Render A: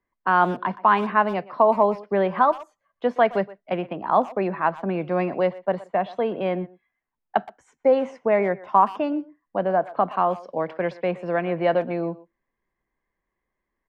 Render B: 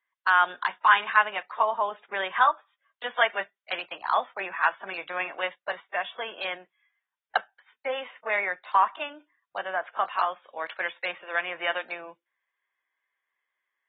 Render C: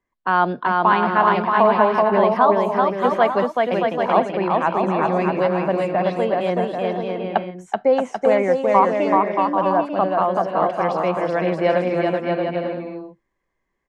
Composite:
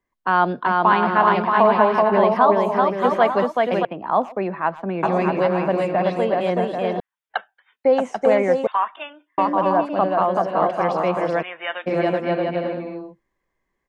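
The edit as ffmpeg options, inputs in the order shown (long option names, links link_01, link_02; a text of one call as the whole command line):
ffmpeg -i take0.wav -i take1.wav -i take2.wav -filter_complex "[1:a]asplit=3[link_01][link_02][link_03];[2:a]asplit=5[link_04][link_05][link_06][link_07][link_08];[link_04]atrim=end=3.852[link_09];[0:a]atrim=start=3.848:end=5.032[link_10];[link_05]atrim=start=5.028:end=7.002[link_11];[link_01]atrim=start=6.998:end=7.852[link_12];[link_06]atrim=start=7.848:end=8.672[link_13];[link_02]atrim=start=8.668:end=9.382[link_14];[link_07]atrim=start=9.378:end=11.43[link_15];[link_03]atrim=start=11.41:end=11.88[link_16];[link_08]atrim=start=11.86[link_17];[link_09][link_10]acrossfade=duration=0.004:curve1=hsin:curve2=hsin[link_18];[link_18][link_11]acrossfade=duration=0.004:curve1=hsin:curve2=hsin[link_19];[link_19][link_12]acrossfade=duration=0.004:curve1=hsin:curve2=hsin[link_20];[link_20][link_13]acrossfade=duration=0.004:curve1=hsin:curve2=hsin[link_21];[link_21][link_14]acrossfade=duration=0.004:curve1=hsin:curve2=hsin[link_22];[link_22][link_15]acrossfade=duration=0.004:curve1=hsin:curve2=hsin[link_23];[link_23][link_16]acrossfade=duration=0.02:curve1=tri:curve2=tri[link_24];[link_24][link_17]acrossfade=duration=0.02:curve1=tri:curve2=tri" out.wav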